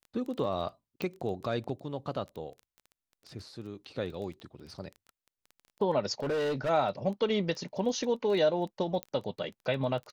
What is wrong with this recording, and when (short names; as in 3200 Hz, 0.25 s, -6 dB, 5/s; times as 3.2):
crackle 11/s -38 dBFS
1.02 pop
4.4 pop -35 dBFS
6.2–6.7 clipped -27.5 dBFS
9.03 pop -20 dBFS